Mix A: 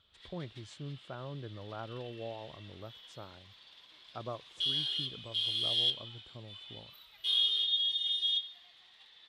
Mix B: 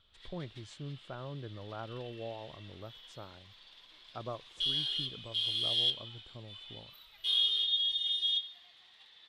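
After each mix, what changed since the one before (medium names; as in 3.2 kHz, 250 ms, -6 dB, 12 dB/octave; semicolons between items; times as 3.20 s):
speech: remove high-pass 51 Hz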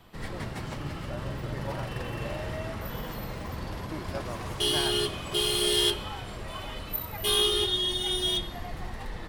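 background: remove band-pass filter 3.5 kHz, Q 6.5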